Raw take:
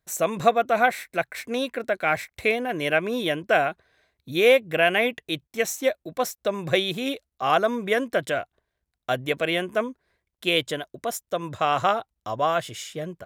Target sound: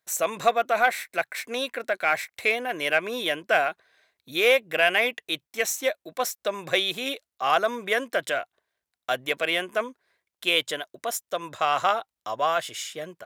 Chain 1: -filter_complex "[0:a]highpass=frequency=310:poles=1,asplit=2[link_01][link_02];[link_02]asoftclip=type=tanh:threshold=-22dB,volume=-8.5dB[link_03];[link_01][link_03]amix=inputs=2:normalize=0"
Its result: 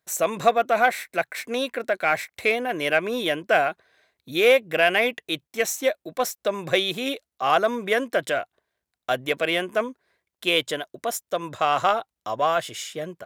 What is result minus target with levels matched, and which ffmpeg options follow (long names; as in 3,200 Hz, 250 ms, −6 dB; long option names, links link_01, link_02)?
250 Hz band +4.5 dB
-filter_complex "[0:a]highpass=frequency=810:poles=1,asplit=2[link_01][link_02];[link_02]asoftclip=type=tanh:threshold=-22dB,volume=-8.5dB[link_03];[link_01][link_03]amix=inputs=2:normalize=0"